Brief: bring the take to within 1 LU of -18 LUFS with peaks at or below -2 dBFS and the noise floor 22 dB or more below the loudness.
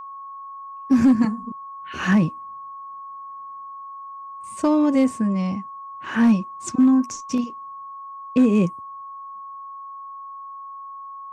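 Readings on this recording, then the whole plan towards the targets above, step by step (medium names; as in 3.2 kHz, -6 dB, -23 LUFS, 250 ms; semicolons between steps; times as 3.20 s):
clipped samples 0.7%; clipping level -10.0 dBFS; steady tone 1.1 kHz; tone level -34 dBFS; loudness -20.5 LUFS; peak level -10.0 dBFS; loudness target -18.0 LUFS
-> clip repair -10 dBFS; band-stop 1.1 kHz, Q 30; trim +2.5 dB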